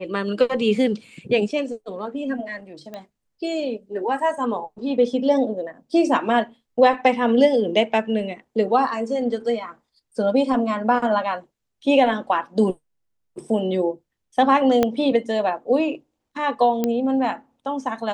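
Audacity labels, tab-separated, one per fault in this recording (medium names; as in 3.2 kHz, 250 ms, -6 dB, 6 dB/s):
2.940000	2.940000	pop -21 dBFS
14.830000	14.830000	pop -6 dBFS
16.840000	16.840000	pop -9 dBFS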